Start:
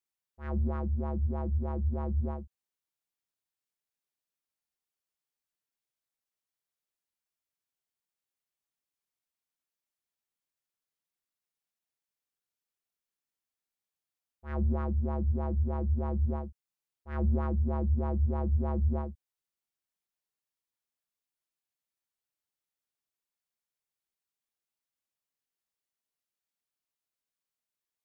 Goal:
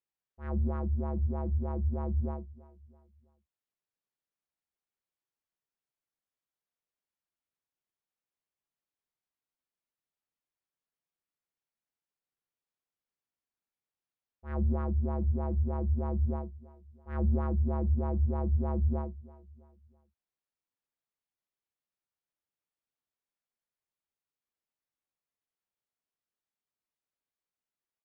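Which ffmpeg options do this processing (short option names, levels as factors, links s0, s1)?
-af "lowpass=f=1800:p=1,aecho=1:1:330|660|990:0.1|0.043|0.0185"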